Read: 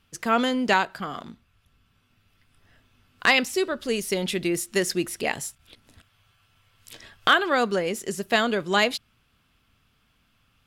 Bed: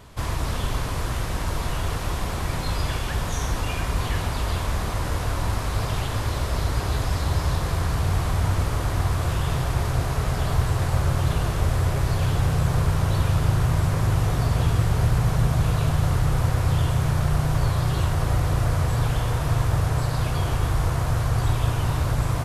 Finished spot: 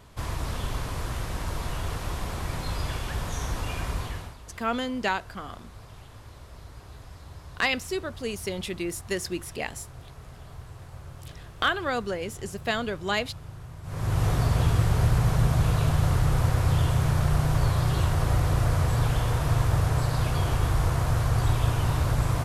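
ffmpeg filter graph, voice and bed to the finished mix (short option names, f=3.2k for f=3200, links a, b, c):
-filter_complex "[0:a]adelay=4350,volume=-6dB[a];[1:a]volume=14.5dB,afade=t=out:st=3.9:d=0.47:silence=0.158489,afade=t=in:st=13.83:d=0.43:silence=0.105925[b];[a][b]amix=inputs=2:normalize=0"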